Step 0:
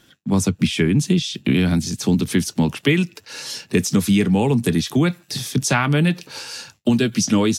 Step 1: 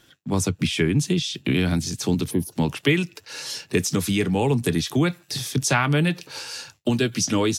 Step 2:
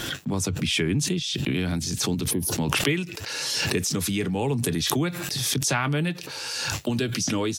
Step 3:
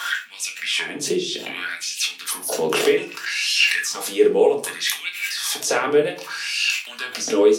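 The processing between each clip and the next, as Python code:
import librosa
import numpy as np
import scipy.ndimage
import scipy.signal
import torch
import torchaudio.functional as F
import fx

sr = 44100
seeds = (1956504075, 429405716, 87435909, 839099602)

y1 = fx.spec_box(x, sr, start_s=2.3, length_s=0.22, low_hz=1100.0, high_hz=9400.0, gain_db=-18)
y1 = fx.peak_eq(y1, sr, hz=210.0, db=-8.5, octaves=0.42)
y1 = y1 * librosa.db_to_amplitude(-1.5)
y2 = fx.pre_swell(y1, sr, db_per_s=23.0)
y2 = y2 * librosa.db_to_amplitude(-5.0)
y3 = fx.filter_lfo_highpass(y2, sr, shape='sine', hz=0.64, low_hz=400.0, high_hz=2700.0, q=5.5)
y3 = fx.room_shoebox(y3, sr, seeds[0], volume_m3=280.0, walls='furnished', distance_m=1.7)
y3 = y3 * librosa.db_to_amplitude(-1.0)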